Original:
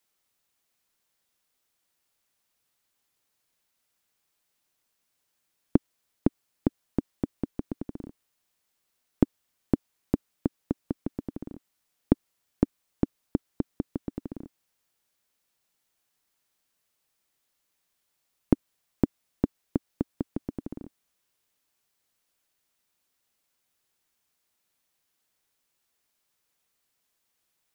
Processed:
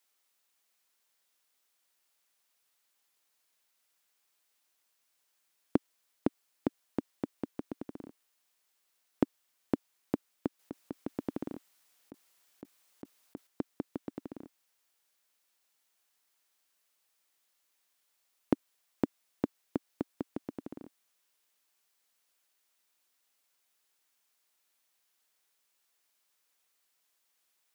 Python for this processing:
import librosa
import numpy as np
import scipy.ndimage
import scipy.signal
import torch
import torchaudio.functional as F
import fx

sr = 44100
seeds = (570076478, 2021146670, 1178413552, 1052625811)

y = fx.highpass(x, sr, hz=570.0, slope=6)
y = fx.over_compress(y, sr, threshold_db=-40.0, ratio=-1.0, at=(10.59, 13.47))
y = y * 10.0 ** (1.0 / 20.0)